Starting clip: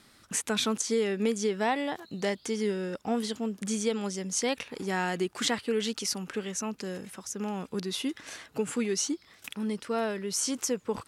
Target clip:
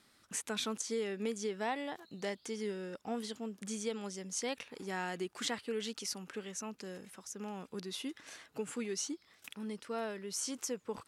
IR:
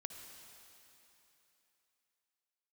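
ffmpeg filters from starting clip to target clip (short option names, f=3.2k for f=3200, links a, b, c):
-af "lowshelf=f=160:g=-5.5,volume=-8dB"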